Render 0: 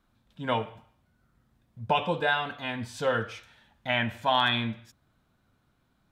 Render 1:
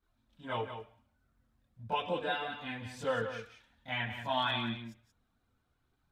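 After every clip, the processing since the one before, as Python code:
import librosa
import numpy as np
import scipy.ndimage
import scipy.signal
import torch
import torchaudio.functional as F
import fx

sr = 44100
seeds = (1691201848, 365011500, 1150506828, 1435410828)

y = fx.chorus_voices(x, sr, voices=4, hz=0.4, base_ms=25, depth_ms=2.4, mix_pct=70)
y = y + 10.0 ** (-9.0 / 20.0) * np.pad(y, (int(179 * sr / 1000.0), 0))[:len(y)]
y = y * librosa.db_to_amplitude(-5.5)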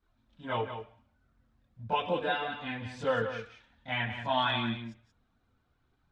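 y = fx.air_absorb(x, sr, metres=91.0)
y = y * librosa.db_to_amplitude(4.0)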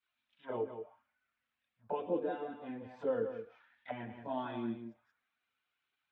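y = fx.auto_wah(x, sr, base_hz=350.0, top_hz=2700.0, q=2.4, full_db=-33.5, direction='down')
y = y * librosa.db_to_amplitude(3.0)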